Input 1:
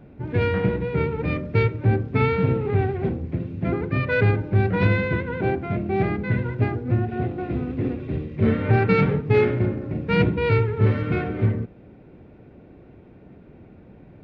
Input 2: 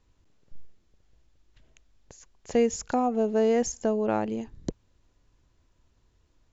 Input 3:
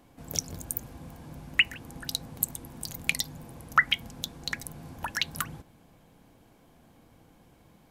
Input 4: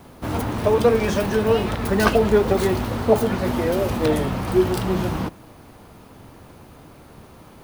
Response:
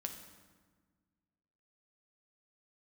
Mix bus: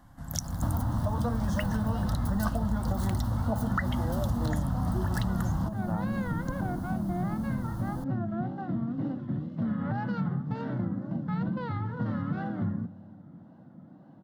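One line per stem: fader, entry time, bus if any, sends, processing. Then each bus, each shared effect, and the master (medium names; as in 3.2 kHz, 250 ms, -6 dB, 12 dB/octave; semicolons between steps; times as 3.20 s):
-4.5 dB, 1.20 s, send -14 dB, high-pass 170 Hz 24 dB/octave; peak limiter -17.5 dBFS, peak gain reduction 10.5 dB; wow and flutter 150 cents
-6.0 dB, 1.80 s, no send, none
-2.0 dB, 0.00 s, no send, peaking EQ 1.9 kHz +12.5 dB 1.4 oct
+1.5 dB, 0.40 s, no send, none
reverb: on, RT60 1.5 s, pre-delay 5 ms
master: bass shelf 330 Hz +11 dB; static phaser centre 1 kHz, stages 4; compression 6:1, threshold -26 dBFS, peak gain reduction 17 dB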